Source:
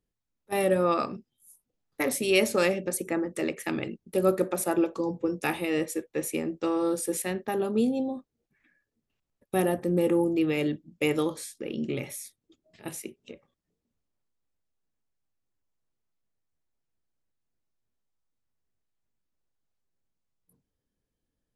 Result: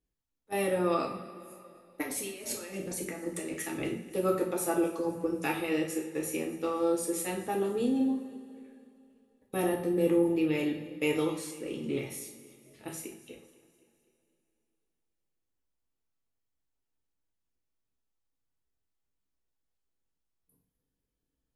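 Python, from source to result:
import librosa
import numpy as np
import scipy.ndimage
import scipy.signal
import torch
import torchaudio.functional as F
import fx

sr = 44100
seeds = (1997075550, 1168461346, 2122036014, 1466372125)

y = fx.over_compress(x, sr, threshold_db=-35.0, ratio=-1.0, at=(2.01, 4.07), fade=0.02)
y = fx.echo_feedback(y, sr, ms=254, feedback_pct=49, wet_db=-20.5)
y = fx.rev_double_slope(y, sr, seeds[0], early_s=0.48, late_s=3.1, knee_db=-21, drr_db=-1.0)
y = y * 10.0 ** (-6.0 / 20.0)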